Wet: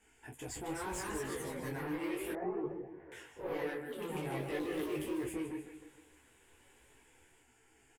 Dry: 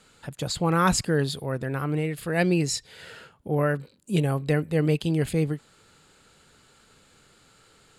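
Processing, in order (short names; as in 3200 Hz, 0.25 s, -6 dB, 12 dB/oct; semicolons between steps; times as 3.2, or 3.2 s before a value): fixed phaser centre 830 Hz, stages 8; doubler 16 ms -3 dB; feedback echo 0.153 s, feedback 43%, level -11 dB; limiter -20.5 dBFS, peak gain reduction 9 dB; soft clip -28 dBFS, distortion -13 dB; 4.74–5.25 companded quantiser 6-bit; echoes that change speed 0.31 s, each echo +2 st, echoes 2; 0.72–1.58 compressor, threshold -29 dBFS, peak gain reduction 3 dB; 2.33–3.12 LPF 1200 Hz 24 dB/oct; detuned doubles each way 30 cents; gain -3.5 dB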